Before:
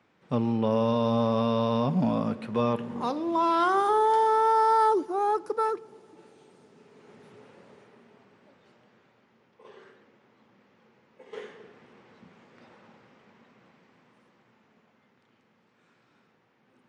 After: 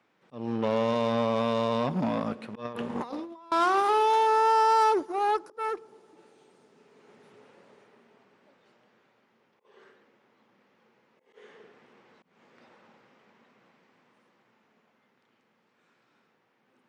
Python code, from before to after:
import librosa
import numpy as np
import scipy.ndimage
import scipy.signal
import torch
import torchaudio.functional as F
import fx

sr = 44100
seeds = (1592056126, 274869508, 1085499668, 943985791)

y = fx.auto_swell(x, sr, attack_ms=234.0)
y = fx.over_compress(y, sr, threshold_db=-33.0, ratio=-0.5, at=(2.65, 3.52))
y = fx.cheby_harmonics(y, sr, harmonics=(5, 6, 7), levels_db=(-29, -23, -25), full_scale_db=-15.5)
y = fx.highpass(y, sr, hz=250.0, slope=6)